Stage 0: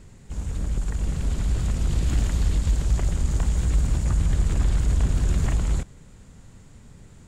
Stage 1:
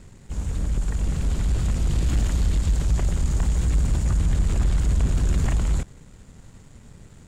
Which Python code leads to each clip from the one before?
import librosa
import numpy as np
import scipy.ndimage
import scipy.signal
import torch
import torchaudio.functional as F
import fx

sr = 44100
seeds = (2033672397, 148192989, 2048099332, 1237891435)

y = fx.leveller(x, sr, passes=1)
y = y * 10.0 ** (-1.5 / 20.0)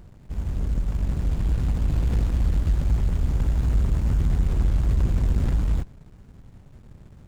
y = fx.running_max(x, sr, window=65)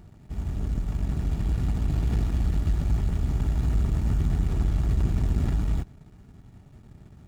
y = fx.notch_comb(x, sr, f0_hz=520.0)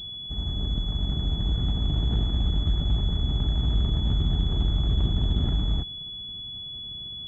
y = fx.pwm(x, sr, carrier_hz=3400.0)